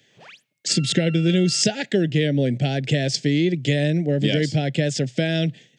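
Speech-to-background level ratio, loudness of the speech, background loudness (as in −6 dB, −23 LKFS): 18.5 dB, −21.5 LKFS, −40.0 LKFS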